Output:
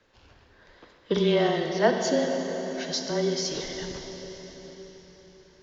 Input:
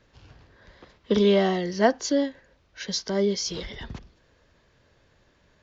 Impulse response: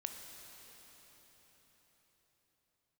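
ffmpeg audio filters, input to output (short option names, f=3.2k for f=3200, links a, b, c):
-filter_complex "[0:a]bass=f=250:g=-7,treble=f=4k:g=-1[a];[1:a]atrim=start_sample=2205[b];[a][b]afir=irnorm=-1:irlink=0,afreqshift=-20,volume=2dB"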